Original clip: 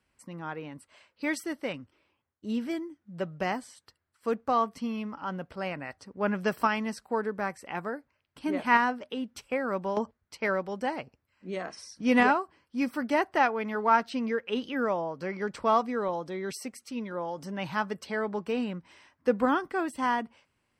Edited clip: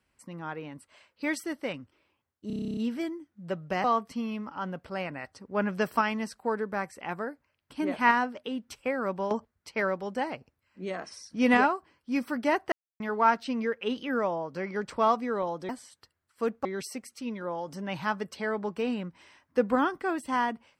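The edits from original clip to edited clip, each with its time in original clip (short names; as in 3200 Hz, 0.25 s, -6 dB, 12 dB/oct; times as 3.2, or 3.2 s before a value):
2.47 stutter 0.03 s, 11 plays
3.54–4.5 move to 16.35
13.38–13.66 mute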